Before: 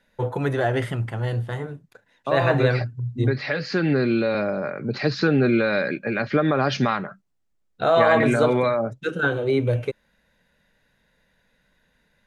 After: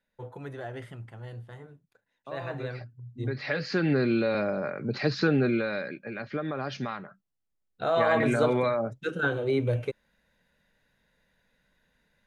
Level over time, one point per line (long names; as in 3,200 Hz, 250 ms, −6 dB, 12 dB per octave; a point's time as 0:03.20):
0:03.05 −16 dB
0:03.52 −4 dB
0:05.30 −4 dB
0:05.95 −12 dB
0:07.06 −12 dB
0:08.41 −5 dB